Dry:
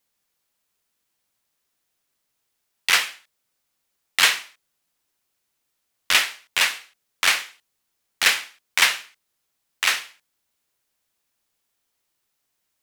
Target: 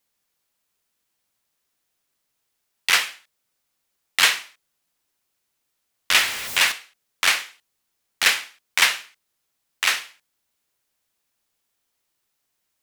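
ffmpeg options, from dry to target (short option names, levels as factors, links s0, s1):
-filter_complex "[0:a]asettb=1/sr,asplit=3[s0][s1][s2];[s0]atrim=end=6.164[s3];[s1]atrim=start=6.16:end=6.72,asetpts=PTS-STARTPTS,afade=t=in:d=0.004:c=qsin,afade=t=out:st=0.556:d=0.004:c=qsin,aeval=exprs='val(0)+0.5*0.0531*sgn(val(0))':c=same[s4];[s2]atrim=start=6.716[s5];[s3][s4]acrossfade=d=0.004:c1=hsin:c2=qsin[s6];[s6][s5]acrossfade=d=0.004:c1=qsin:c2=hsin"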